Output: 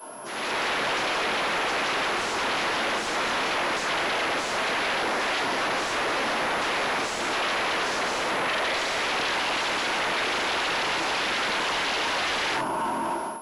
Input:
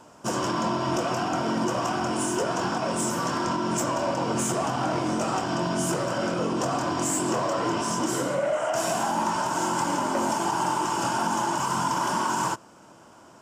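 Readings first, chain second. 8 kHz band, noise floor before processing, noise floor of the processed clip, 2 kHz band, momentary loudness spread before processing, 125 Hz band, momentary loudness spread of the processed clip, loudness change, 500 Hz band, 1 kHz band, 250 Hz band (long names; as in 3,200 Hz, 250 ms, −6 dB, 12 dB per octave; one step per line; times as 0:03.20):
−5.0 dB, −51 dBFS, −30 dBFS, +9.0 dB, 2 LU, −12.0 dB, 1 LU, +1.0 dB, −2.0 dB, −1.0 dB, −8.0 dB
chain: tape delay 543 ms, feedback 77%, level −17 dB, low-pass 1,200 Hz
rectangular room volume 270 cubic metres, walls furnished, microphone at 5.2 metres
wave folding −19.5 dBFS
brickwall limiter −30.5 dBFS, peak gain reduction 11 dB
high-pass filter 320 Hz 12 dB per octave
automatic gain control gain up to 15 dB
soft clipping −22.5 dBFS, distortion −11 dB
switching amplifier with a slow clock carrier 11,000 Hz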